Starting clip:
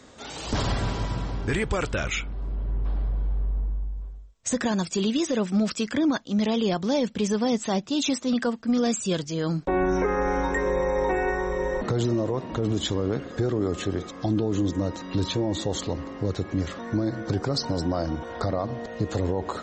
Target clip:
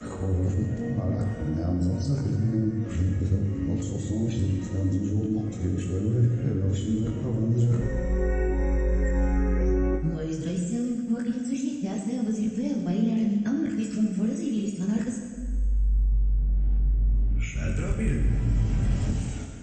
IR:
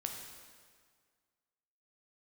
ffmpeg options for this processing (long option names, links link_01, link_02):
-filter_complex "[0:a]areverse,acrossover=split=300|770|1300[link_01][link_02][link_03][link_04];[link_04]aexciter=amount=6.4:drive=8.9:freq=6300[link_05];[link_01][link_02][link_03][link_05]amix=inputs=4:normalize=0,bandreject=frequency=3600:width=16,flanger=delay=18:depth=5:speed=0.81,equalizer=frequency=250:width_type=o:width=0.67:gain=4,equalizer=frequency=1000:width_type=o:width=0.67:gain=-9,equalizer=frequency=2500:width_type=o:width=0.67:gain=4,acompressor=threshold=-31dB:ratio=4,bass=frequency=250:gain=13,treble=frequency=4000:gain=-13[link_06];[1:a]atrim=start_sample=2205[link_07];[link_06][link_07]afir=irnorm=-1:irlink=0,aresample=22050,aresample=44100"